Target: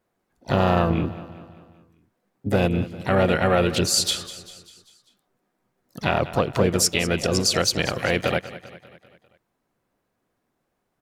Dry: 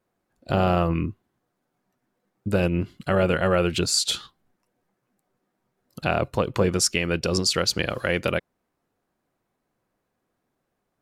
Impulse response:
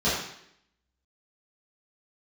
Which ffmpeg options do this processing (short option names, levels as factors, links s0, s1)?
-filter_complex "[0:a]aecho=1:1:197|394|591|788|985:0.168|0.089|0.0472|0.025|0.0132,asplit=2[s0][s1];[s1]asetrate=58866,aresample=44100,atempo=0.749154,volume=0.398[s2];[s0][s2]amix=inputs=2:normalize=0,volume=1.12"